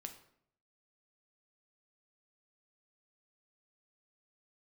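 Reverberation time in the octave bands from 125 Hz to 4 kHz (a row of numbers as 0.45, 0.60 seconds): 0.80, 0.75, 0.70, 0.60, 0.55, 0.45 seconds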